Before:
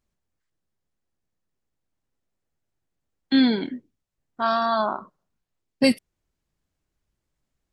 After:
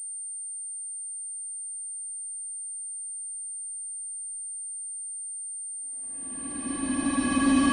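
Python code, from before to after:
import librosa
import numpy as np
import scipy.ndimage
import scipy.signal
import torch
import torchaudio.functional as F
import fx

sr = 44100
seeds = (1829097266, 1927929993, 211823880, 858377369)

p1 = fx.spec_dropout(x, sr, seeds[0], share_pct=33)
p2 = fx.high_shelf(p1, sr, hz=3000.0, db=-9.0)
p3 = fx.over_compress(p2, sr, threshold_db=-25.0, ratio=-0.5)
p4 = p2 + F.gain(torch.from_numpy(p3), 1.5).numpy()
p5 = fx.sample_hold(p4, sr, seeds[1], rate_hz=1400.0, jitter_pct=0)
p6 = fx.paulstretch(p5, sr, seeds[2], factor=38.0, window_s=0.1, from_s=3.12)
y = fx.pwm(p6, sr, carrier_hz=8900.0)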